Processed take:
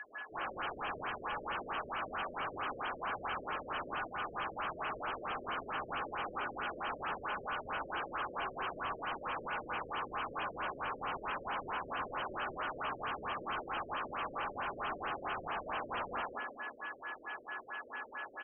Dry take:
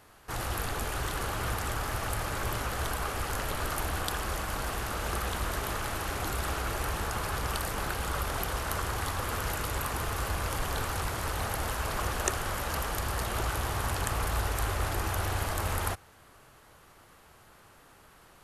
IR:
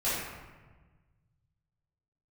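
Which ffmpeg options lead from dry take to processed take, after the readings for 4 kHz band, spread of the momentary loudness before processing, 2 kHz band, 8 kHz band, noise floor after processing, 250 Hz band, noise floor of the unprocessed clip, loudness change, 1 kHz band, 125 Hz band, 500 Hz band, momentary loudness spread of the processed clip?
−9.0 dB, 2 LU, −4.0 dB, below −40 dB, −52 dBFS, −8.5 dB, −57 dBFS, −7.0 dB, −3.0 dB, −22.0 dB, −6.0 dB, 4 LU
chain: -filter_complex "[1:a]atrim=start_sample=2205,asetrate=70560,aresample=44100[link_01];[0:a][link_01]afir=irnorm=-1:irlink=0,aeval=exprs='val(0)+0.00562*sin(2*PI*1700*n/s)':channel_layout=same,acrossover=split=2000[link_02][link_03];[link_02]dynaudnorm=framelen=120:gausssize=3:maxgain=4.5dB[link_04];[link_04][link_03]amix=inputs=2:normalize=0,afftfilt=real='re*between(b*sr/4096,210,4600)':imag='im*between(b*sr/4096,210,4600)':win_size=4096:overlap=0.75,aderivative,asplit=2[link_05][link_06];[link_06]adelay=178,lowpass=frequency=2600:poles=1,volume=-3.5dB,asplit=2[link_07][link_08];[link_08]adelay=178,lowpass=frequency=2600:poles=1,volume=0.27,asplit=2[link_09][link_10];[link_10]adelay=178,lowpass=frequency=2600:poles=1,volume=0.27,asplit=2[link_11][link_12];[link_12]adelay=178,lowpass=frequency=2600:poles=1,volume=0.27[link_13];[link_05][link_07][link_09][link_11][link_13]amix=inputs=5:normalize=0,areverse,acompressor=threshold=-49dB:ratio=8,areverse,aeval=exprs='0.01*sin(PI/2*2.51*val(0)/0.01)':channel_layout=same,equalizer=frequency=1900:width_type=o:width=0.35:gain=-7.5,afftfilt=real='re*lt(b*sr/1024,590*pow(3300/590,0.5+0.5*sin(2*PI*4.5*pts/sr)))':imag='im*lt(b*sr/1024,590*pow(3300/590,0.5+0.5*sin(2*PI*4.5*pts/sr)))':win_size=1024:overlap=0.75,volume=8.5dB"

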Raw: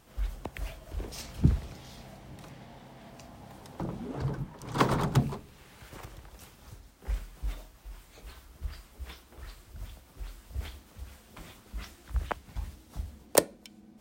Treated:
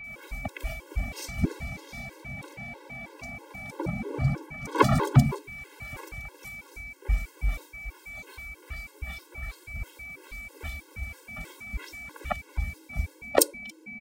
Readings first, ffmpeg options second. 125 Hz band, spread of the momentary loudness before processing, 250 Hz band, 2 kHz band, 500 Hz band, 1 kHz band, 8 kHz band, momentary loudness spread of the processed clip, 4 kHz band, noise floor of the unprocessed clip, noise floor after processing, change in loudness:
+4.0 dB, 22 LU, +4.0 dB, +9.0 dB, +3.5 dB, +4.5 dB, +3.5 dB, 17 LU, +2.5 dB, −57 dBFS, −55 dBFS, +1.5 dB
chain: -filter_complex "[0:a]acrossover=split=3600[link_01][link_02];[link_02]adelay=40[link_03];[link_01][link_03]amix=inputs=2:normalize=0,aeval=exprs='val(0)+0.00501*sin(2*PI*2300*n/s)':channel_layout=same,afftfilt=real='re*gt(sin(2*PI*3.1*pts/sr)*(1-2*mod(floor(b*sr/1024/280),2)),0)':imag='im*gt(sin(2*PI*3.1*pts/sr)*(1-2*mod(floor(b*sr/1024/280),2)),0)':win_size=1024:overlap=0.75,volume=7.5dB"

